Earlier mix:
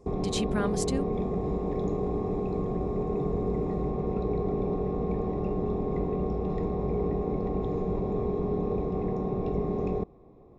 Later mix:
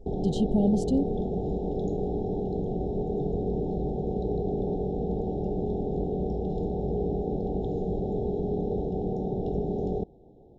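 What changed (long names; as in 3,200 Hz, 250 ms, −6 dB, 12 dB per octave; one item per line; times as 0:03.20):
speech: add spectral tilt −4 dB per octave
master: add linear-phase brick-wall band-stop 910–2,800 Hz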